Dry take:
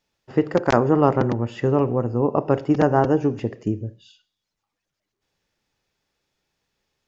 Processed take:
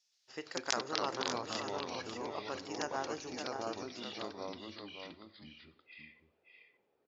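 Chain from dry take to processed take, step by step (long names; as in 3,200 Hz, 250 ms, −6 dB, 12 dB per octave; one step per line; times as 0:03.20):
band-pass filter sweep 5,700 Hz → 470 Hz, 0:03.56–0:05.60
delay with pitch and tempo change per echo 116 ms, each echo −3 semitones, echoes 2
on a send: single-tap delay 573 ms −7 dB
on the sum: level +6 dB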